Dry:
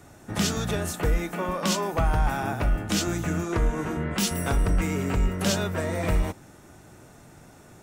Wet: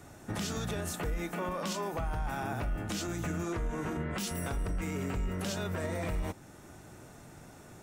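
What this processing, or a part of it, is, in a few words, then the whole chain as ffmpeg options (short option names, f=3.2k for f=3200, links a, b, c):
stacked limiters: -af "alimiter=limit=-19.5dB:level=0:latency=1:release=430,alimiter=level_in=1dB:limit=-24dB:level=0:latency=1:release=47,volume=-1dB,volume=-1.5dB"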